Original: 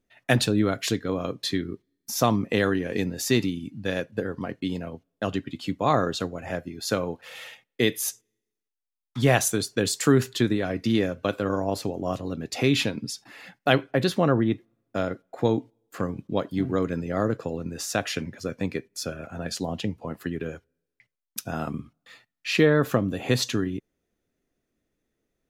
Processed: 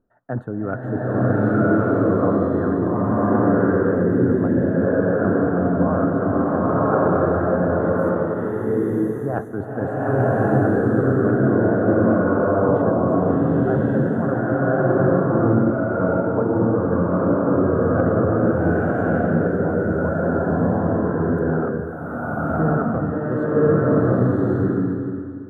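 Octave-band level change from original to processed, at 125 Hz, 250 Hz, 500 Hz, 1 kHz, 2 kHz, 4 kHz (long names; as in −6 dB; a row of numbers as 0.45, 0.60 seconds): +8.5 dB, +8.5 dB, +9.0 dB, +7.5 dB, +3.0 dB, below −30 dB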